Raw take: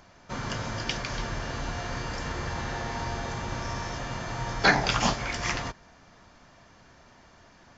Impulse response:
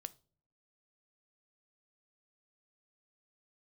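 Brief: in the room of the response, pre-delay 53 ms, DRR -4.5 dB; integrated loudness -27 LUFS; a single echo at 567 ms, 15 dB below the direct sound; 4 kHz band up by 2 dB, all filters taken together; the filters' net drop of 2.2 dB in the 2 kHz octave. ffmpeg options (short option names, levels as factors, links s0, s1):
-filter_complex "[0:a]equalizer=f=2000:t=o:g=-3.5,equalizer=f=4000:t=o:g=3.5,aecho=1:1:567:0.178,asplit=2[s0][s1];[1:a]atrim=start_sample=2205,adelay=53[s2];[s1][s2]afir=irnorm=-1:irlink=0,volume=2.82[s3];[s0][s3]amix=inputs=2:normalize=0,volume=0.75"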